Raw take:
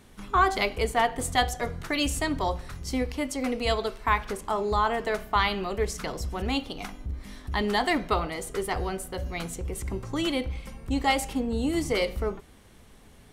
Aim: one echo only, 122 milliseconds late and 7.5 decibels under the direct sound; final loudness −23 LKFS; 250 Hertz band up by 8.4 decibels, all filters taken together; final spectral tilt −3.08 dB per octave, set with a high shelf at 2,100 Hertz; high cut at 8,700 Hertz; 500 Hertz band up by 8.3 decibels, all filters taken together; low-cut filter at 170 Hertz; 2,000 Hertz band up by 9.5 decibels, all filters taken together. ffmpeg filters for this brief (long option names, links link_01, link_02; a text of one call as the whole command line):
ffmpeg -i in.wav -af "highpass=170,lowpass=8700,equalizer=frequency=250:width_type=o:gain=8.5,equalizer=frequency=500:width_type=o:gain=7,equalizer=frequency=2000:width_type=o:gain=6,highshelf=frequency=2100:gain=8.5,aecho=1:1:122:0.422,volume=-3dB" out.wav